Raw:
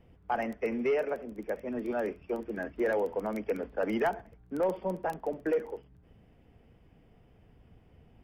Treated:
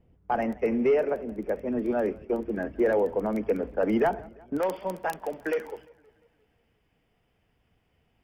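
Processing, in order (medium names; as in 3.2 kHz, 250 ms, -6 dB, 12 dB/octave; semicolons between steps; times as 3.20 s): gate -47 dBFS, range -10 dB; tilt shelf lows +4 dB, about 850 Hz, from 4.57 s lows -6.5 dB; modulated delay 175 ms, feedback 55%, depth 151 cents, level -23.5 dB; trim +3.5 dB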